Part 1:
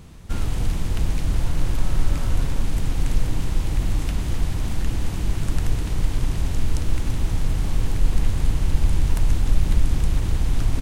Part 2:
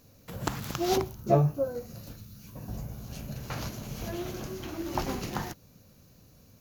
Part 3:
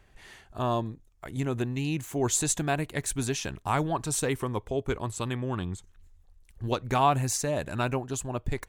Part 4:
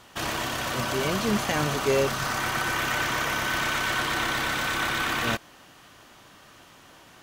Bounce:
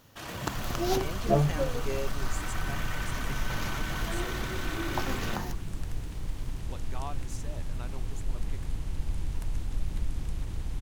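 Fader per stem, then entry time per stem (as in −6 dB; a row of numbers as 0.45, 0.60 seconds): −13.0, −2.0, −17.5, −11.5 decibels; 0.25, 0.00, 0.00, 0.00 seconds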